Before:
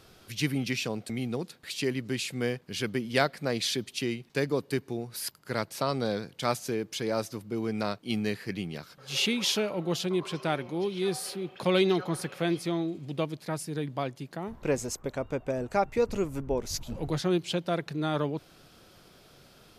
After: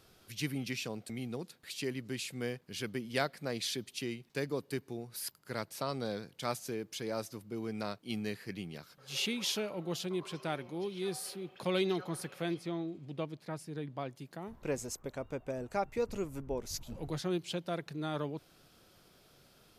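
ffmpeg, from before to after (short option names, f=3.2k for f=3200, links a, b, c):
-filter_complex "[0:a]asettb=1/sr,asplit=3[a][b][c];[a]atrim=end=12.544[d];[b]atrim=start=12.54:end=14.1,asetpts=PTS-STARTPTS,afade=t=in:d=0.004:c=qsin,afade=t=out:st=1.556:d=0.004:c=qsin,lowpass=f=3.3k:p=1[e];[c]atrim=start=14.096[f];[d][e]acrossfade=d=0.004:c1=hsin:c2=qsin[g];[g][f]acrossfade=d=0.004:c1=qsin:c2=hsin,highshelf=f=8.9k:g=5.5,volume=-7.5dB"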